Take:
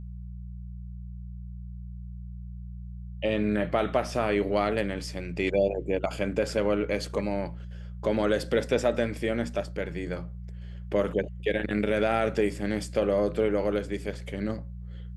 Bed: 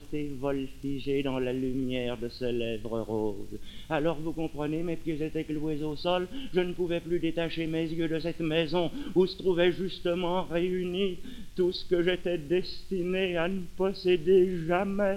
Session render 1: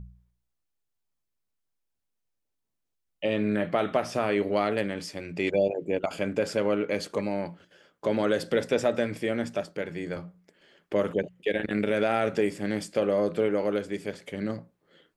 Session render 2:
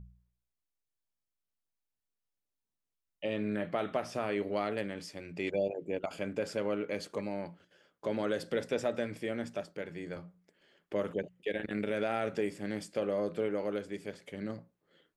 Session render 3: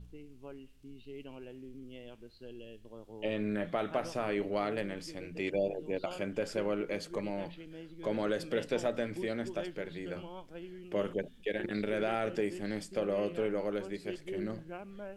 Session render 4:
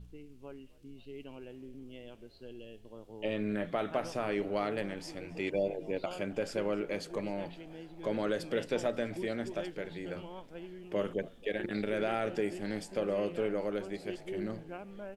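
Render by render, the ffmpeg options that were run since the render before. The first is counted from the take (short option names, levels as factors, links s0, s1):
-af "bandreject=f=60:t=h:w=4,bandreject=f=120:t=h:w=4,bandreject=f=180:t=h:w=4"
-af "volume=0.422"
-filter_complex "[1:a]volume=0.133[s0];[0:a][s0]amix=inputs=2:normalize=0"
-filter_complex "[0:a]asplit=6[s0][s1][s2][s3][s4][s5];[s1]adelay=265,afreqshift=65,volume=0.0708[s6];[s2]adelay=530,afreqshift=130,volume=0.0462[s7];[s3]adelay=795,afreqshift=195,volume=0.0299[s8];[s4]adelay=1060,afreqshift=260,volume=0.0195[s9];[s5]adelay=1325,afreqshift=325,volume=0.0126[s10];[s0][s6][s7][s8][s9][s10]amix=inputs=6:normalize=0"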